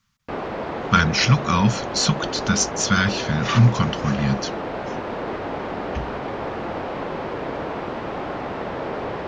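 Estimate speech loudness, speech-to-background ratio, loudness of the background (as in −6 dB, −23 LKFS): −20.5 LKFS, 8.5 dB, −29.0 LKFS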